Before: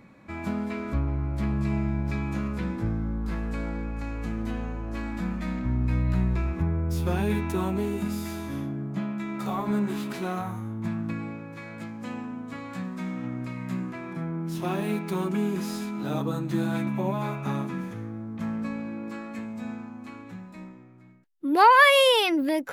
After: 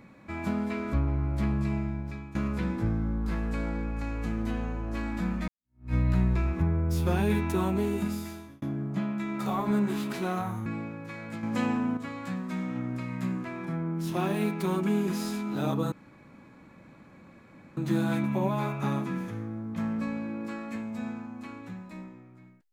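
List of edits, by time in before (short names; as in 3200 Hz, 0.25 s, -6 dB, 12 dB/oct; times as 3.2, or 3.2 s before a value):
1.43–2.35 fade out, to -16 dB
5.48–5.94 fade in exponential
8–8.62 fade out
10.66–11.14 cut
11.91–12.45 gain +7.5 dB
16.4 insert room tone 1.85 s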